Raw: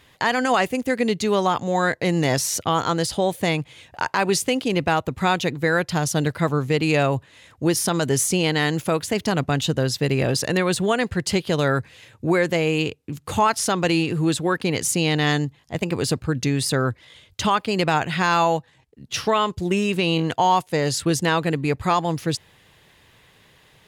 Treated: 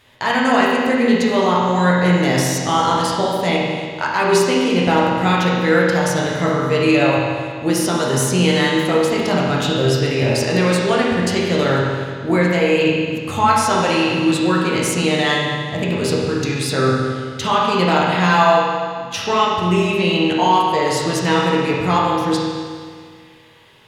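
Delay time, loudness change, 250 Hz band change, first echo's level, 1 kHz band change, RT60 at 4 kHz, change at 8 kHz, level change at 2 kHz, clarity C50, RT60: no echo, +5.0 dB, +5.5 dB, no echo, +5.5 dB, 1.9 s, 0.0 dB, +5.0 dB, -1.0 dB, 1.9 s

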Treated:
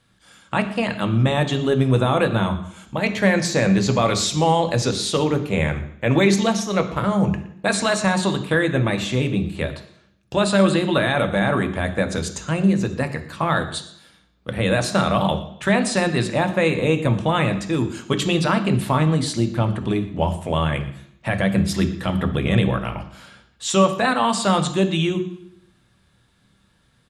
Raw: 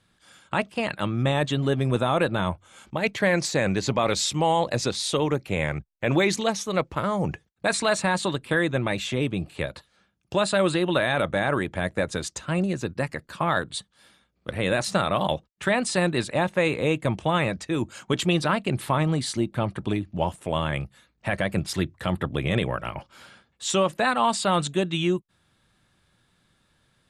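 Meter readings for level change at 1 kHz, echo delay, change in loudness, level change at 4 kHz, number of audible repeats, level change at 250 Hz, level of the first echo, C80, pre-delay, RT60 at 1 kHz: +3.5 dB, 118 ms, +4.5 dB, +3.5 dB, 1, +6.5 dB, -20.0 dB, 14.0 dB, 3 ms, 0.65 s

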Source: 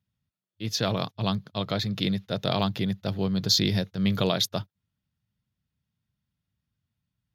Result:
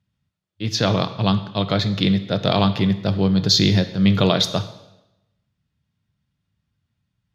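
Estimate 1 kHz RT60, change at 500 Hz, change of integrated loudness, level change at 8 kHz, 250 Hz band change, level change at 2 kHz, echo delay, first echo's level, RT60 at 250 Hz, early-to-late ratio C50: 0.90 s, +7.5 dB, +7.5 dB, +4.0 dB, +8.5 dB, +7.5 dB, no echo, no echo, 0.95 s, 13.0 dB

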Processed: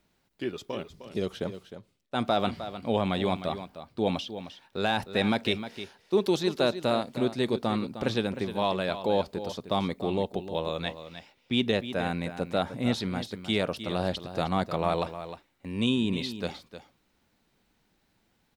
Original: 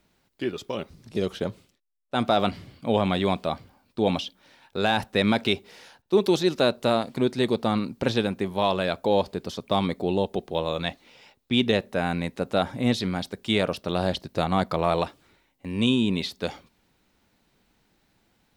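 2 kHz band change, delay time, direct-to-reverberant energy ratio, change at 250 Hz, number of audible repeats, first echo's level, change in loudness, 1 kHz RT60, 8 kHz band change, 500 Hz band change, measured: -3.5 dB, 308 ms, no reverb, -3.5 dB, 1, -11.5 dB, -4.0 dB, no reverb, -3.5 dB, -3.5 dB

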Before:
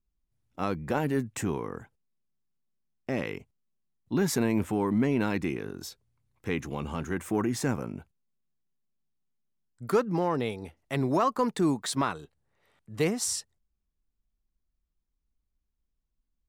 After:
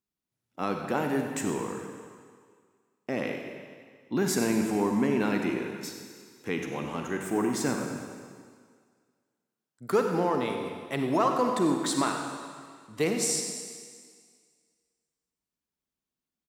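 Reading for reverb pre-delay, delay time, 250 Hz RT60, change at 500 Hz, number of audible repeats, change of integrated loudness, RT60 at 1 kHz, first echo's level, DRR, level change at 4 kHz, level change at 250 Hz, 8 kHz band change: 37 ms, 95 ms, 1.8 s, +1.5 dB, 1, +0.5 dB, 1.9 s, -13.0 dB, 3.0 dB, +2.0 dB, +0.5 dB, +3.0 dB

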